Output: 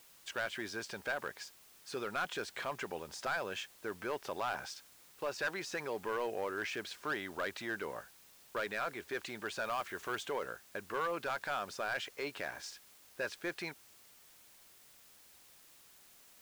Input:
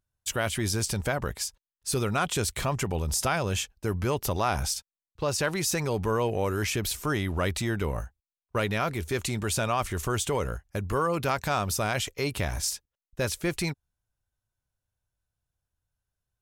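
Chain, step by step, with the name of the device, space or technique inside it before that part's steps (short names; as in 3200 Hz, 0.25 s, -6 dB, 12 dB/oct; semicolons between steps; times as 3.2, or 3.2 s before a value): drive-through speaker (BPF 360–3700 Hz; bell 1600 Hz +7.5 dB 0.28 oct; hard clip -22 dBFS, distortion -12 dB; white noise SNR 20 dB); 9.64–10.23 high shelf 9300 Hz +5 dB; gain -7.5 dB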